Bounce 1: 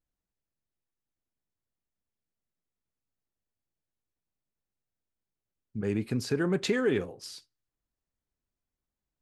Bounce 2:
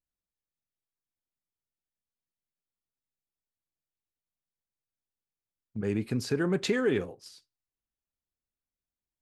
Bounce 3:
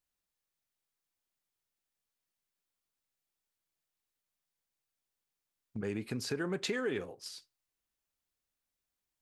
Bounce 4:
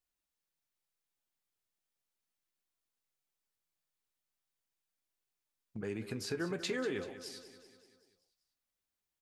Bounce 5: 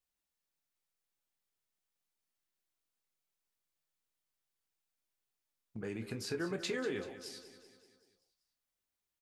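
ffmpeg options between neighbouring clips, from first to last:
-af "agate=range=-8dB:threshold=-41dB:ratio=16:detection=peak"
-af "lowshelf=f=370:g=-7,acompressor=threshold=-46dB:ratio=2,volume=6dB"
-filter_complex "[0:a]flanger=delay=2.7:depth=9.5:regen=65:speed=0.38:shape=sinusoidal,asplit=2[a][b];[b]aecho=0:1:192|384|576|768|960|1152:0.224|0.125|0.0702|0.0393|0.022|0.0123[c];[a][c]amix=inputs=2:normalize=0,volume=2dB"
-filter_complex "[0:a]asplit=2[a][b];[b]adelay=26,volume=-10.5dB[c];[a][c]amix=inputs=2:normalize=0,volume=-1dB"

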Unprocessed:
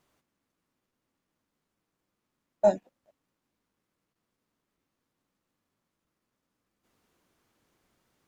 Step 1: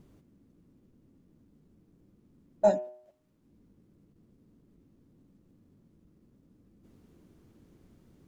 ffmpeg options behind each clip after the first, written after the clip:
-filter_complex "[0:a]bandreject=f=123:t=h:w=4,bandreject=f=246:t=h:w=4,bandreject=f=369:t=h:w=4,bandreject=f=492:t=h:w=4,bandreject=f=615:t=h:w=4,bandreject=f=738:t=h:w=4,bandreject=f=861:t=h:w=4,bandreject=f=984:t=h:w=4,bandreject=f=1.107k:t=h:w=4,bandreject=f=1.23k:t=h:w=4,bandreject=f=1.353k:t=h:w=4,bandreject=f=1.476k:t=h:w=4,bandreject=f=1.599k:t=h:w=4,bandreject=f=1.722k:t=h:w=4,bandreject=f=1.845k:t=h:w=4,bandreject=f=1.968k:t=h:w=4,bandreject=f=2.091k:t=h:w=4,bandreject=f=2.214k:t=h:w=4,bandreject=f=2.337k:t=h:w=4,bandreject=f=2.46k:t=h:w=4,bandreject=f=2.583k:t=h:w=4,bandreject=f=2.706k:t=h:w=4,bandreject=f=2.829k:t=h:w=4,bandreject=f=2.952k:t=h:w=4,bandreject=f=3.075k:t=h:w=4,acrossover=split=370[a][b];[a]acompressor=mode=upward:threshold=-42dB:ratio=2.5[c];[c][b]amix=inputs=2:normalize=0"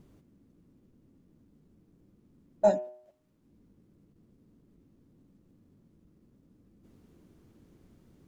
-af anull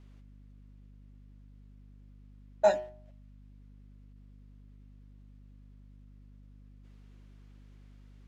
-filter_complex "[0:a]bandpass=f=2.5k:t=q:w=0.81:csg=0,asplit=2[a][b];[b]aeval=exprs='sgn(val(0))*max(abs(val(0))-0.00158,0)':c=same,volume=-4.5dB[c];[a][c]amix=inputs=2:normalize=0,aeval=exprs='val(0)+0.00126*(sin(2*PI*50*n/s)+sin(2*PI*2*50*n/s)/2+sin(2*PI*3*50*n/s)/3+sin(2*PI*4*50*n/s)/4+sin(2*PI*5*50*n/s)/5)':c=same,volume=5.5dB"

